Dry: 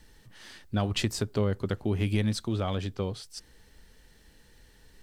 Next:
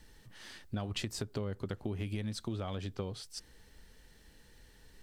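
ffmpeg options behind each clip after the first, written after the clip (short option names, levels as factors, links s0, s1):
-af "acompressor=threshold=0.0282:ratio=12,volume=0.794"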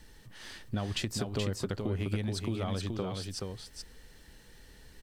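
-af "aecho=1:1:426:0.596,volume=1.5"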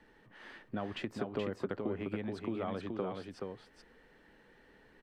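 -filter_complex "[0:a]acrossover=split=190 2500:gain=0.141 1 0.0708[s0][s1][s2];[s0][s1][s2]amix=inputs=3:normalize=0"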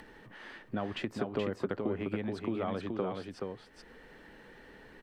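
-af "acompressor=mode=upward:threshold=0.00355:ratio=2.5,volume=1.41"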